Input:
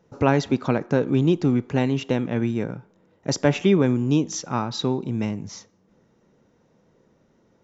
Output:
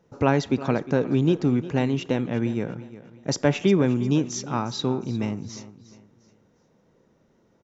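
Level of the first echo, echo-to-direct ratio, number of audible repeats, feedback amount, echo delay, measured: −16.0 dB, −15.5 dB, 3, 35%, 355 ms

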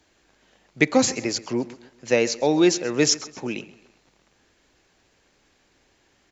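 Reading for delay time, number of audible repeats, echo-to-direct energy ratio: 131 ms, 3, −18.0 dB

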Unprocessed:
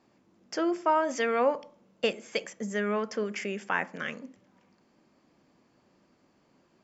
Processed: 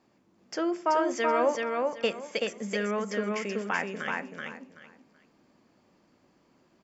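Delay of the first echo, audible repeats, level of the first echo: 380 ms, 3, −3.0 dB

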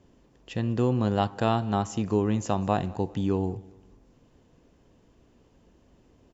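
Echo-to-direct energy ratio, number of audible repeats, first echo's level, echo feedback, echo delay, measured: −23.0 dB, 2, −23.5 dB, 40%, 199 ms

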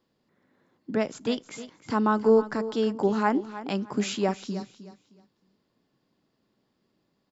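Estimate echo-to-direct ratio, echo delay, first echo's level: −13.5 dB, 310 ms, −14.0 dB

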